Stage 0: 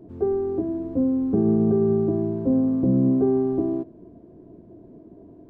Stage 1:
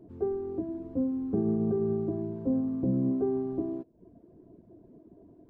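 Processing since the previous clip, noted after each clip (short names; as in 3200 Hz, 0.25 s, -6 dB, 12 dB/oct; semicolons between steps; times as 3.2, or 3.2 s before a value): reverb removal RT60 0.55 s; gain -6.5 dB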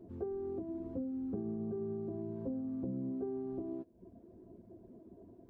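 compressor, threshold -36 dBFS, peak gain reduction 12 dB; notch comb 150 Hz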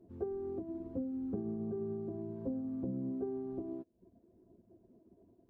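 upward expander 1.5:1, over -59 dBFS; gain +2 dB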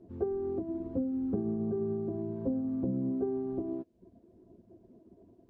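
air absorption 56 m; gain +6 dB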